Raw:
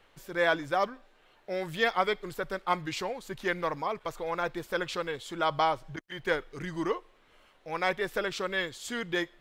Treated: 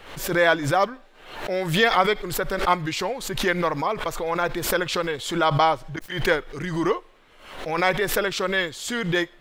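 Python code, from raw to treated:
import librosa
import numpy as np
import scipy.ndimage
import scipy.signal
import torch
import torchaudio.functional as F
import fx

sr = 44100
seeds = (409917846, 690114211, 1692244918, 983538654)

y = fx.pre_swell(x, sr, db_per_s=75.0)
y = y * 10.0 ** (7.0 / 20.0)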